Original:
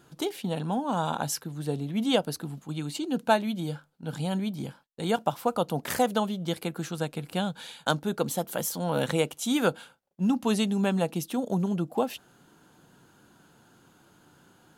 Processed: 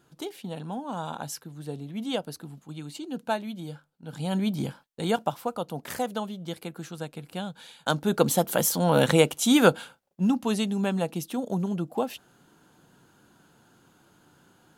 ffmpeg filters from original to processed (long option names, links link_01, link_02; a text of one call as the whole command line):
ffmpeg -i in.wav -af "volume=17dB,afade=type=in:start_time=4.12:duration=0.42:silence=0.281838,afade=type=out:start_time=4.54:duration=1:silence=0.298538,afade=type=in:start_time=7.78:duration=0.43:silence=0.266073,afade=type=out:start_time=9.7:duration=0.77:silence=0.421697" out.wav